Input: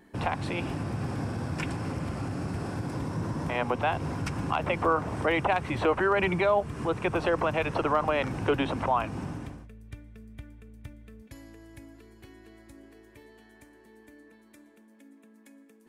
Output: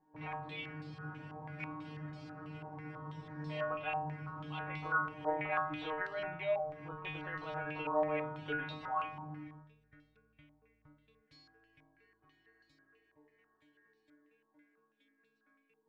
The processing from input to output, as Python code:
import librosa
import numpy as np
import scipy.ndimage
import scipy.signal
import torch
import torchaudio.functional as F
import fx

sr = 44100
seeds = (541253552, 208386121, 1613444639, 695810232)

y = fx.stiff_resonator(x, sr, f0_hz=150.0, decay_s=0.69, stiffness=0.002)
y = fx.filter_held_lowpass(y, sr, hz=6.1, low_hz=920.0, high_hz=4200.0)